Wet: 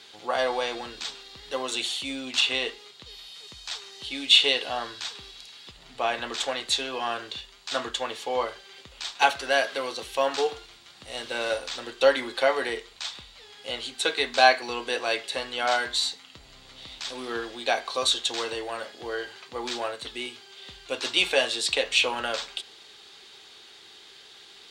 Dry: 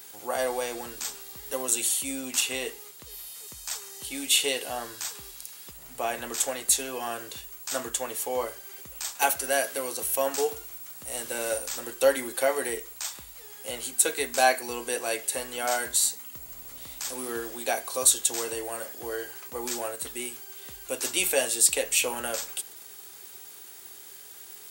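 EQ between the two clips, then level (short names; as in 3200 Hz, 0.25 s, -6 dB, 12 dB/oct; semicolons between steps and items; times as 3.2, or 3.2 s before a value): dynamic EQ 1100 Hz, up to +5 dB, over -41 dBFS, Q 1; synth low-pass 3800 Hz, resonance Q 2.8; 0.0 dB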